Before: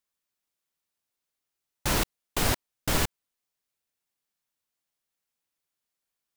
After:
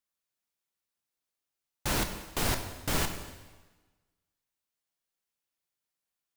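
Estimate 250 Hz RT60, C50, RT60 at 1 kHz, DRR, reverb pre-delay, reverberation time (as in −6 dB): 1.4 s, 8.0 dB, 1.3 s, 6.0 dB, 5 ms, 1.3 s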